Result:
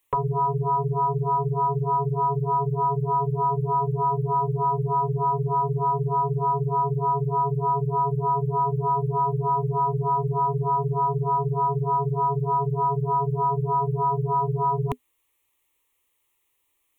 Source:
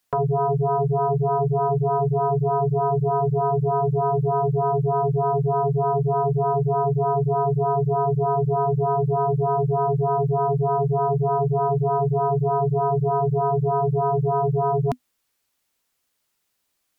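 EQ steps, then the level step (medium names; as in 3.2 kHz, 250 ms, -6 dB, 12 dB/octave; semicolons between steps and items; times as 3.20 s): band-stop 420 Hz, Q 12; static phaser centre 1 kHz, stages 8; +4.0 dB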